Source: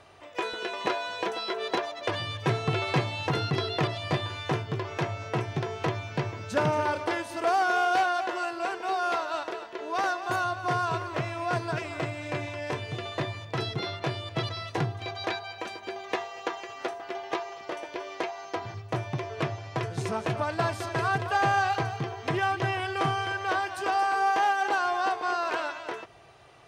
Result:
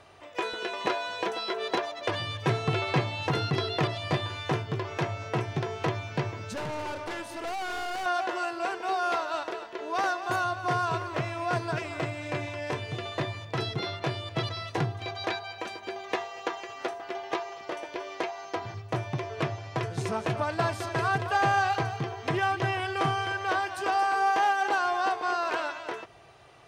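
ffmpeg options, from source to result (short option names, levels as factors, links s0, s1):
-filter_complex "[0:a]asettb=1/sr,asplit=3[s0][s1][s2];[s0]atrim=end=2.814[s3];[s1]atrim=start=2.81:end=3.22,asetpts=PTS-STARTPTS,afade=t=in:d=0.004:c=qsin,afade=t=out:st=0.406:d=0.004:c=qsin,highshelf=f=8000:g=-7.5[s4];[s2]atrim=start=3.216[s5];[s3][s4]acrossfade=d=0.004:c1=hsin:c2=qsin[s6];[s6][s5]acrossfade=d=0.004:c1=qsin:c2=hsin,asettb=1/sr,asplit=3[s7][s8][s9];[s7]atrim=end=6.534[s10];[s8]atrim=start=6.53:end=8.06,asetpts=PTS-STARTPTS,afade=t=in:d=0.004:c=qsin,afade=t=out:st=1.526:d=0.004:c=qsin,aeval=exprs='(tanh(39.8*val(0)+0.3)-tanh(0.3))/39.8':c=same[s11];[s9]atrim=start=8.056[s12];[s10][s11]acrossfade=d=0.004:c1=hsin:c2=qsin[s13];[s13][s12]acrossfade=d=0.004:c1=qsin:c2=hsin"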